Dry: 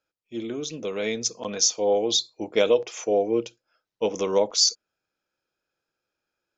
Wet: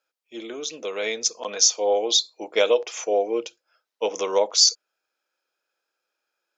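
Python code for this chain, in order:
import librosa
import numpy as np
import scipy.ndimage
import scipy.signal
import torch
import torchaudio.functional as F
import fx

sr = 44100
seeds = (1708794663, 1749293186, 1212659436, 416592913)

y = scipy.signal.sosfilt(scipy.signal.butter(2, 500.0, 'highpass', fs=sr, output='sos'), x)
y = y * librosa.db_to_amplitude(3.5)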